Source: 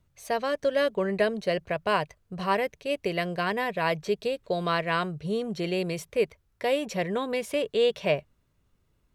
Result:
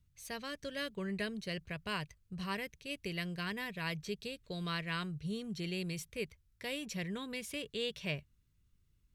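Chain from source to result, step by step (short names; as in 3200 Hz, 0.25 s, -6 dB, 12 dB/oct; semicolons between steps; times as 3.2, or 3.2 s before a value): passive tone stack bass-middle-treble 6-0-2; gain +10.5 dB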